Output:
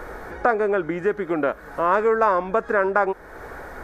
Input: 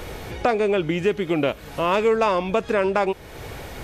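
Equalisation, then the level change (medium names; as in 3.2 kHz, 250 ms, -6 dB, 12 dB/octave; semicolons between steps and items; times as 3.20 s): peaking EQ 110 Hz -14 dB 1.3 oct; resonant high shelf 2.1 kHz -10 dB, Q 3; 0.0 dB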